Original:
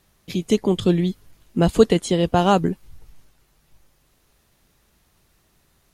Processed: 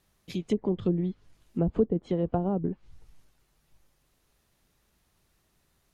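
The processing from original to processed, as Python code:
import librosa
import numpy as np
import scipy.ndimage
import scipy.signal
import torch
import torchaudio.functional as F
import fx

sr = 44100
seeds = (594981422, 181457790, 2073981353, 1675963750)

y = fx.env_lowpass_down(x, sr, base_hz=420.0, full_db=-12.5)
y = F.gain(torch.from_numpy(y), -8.0).numpy()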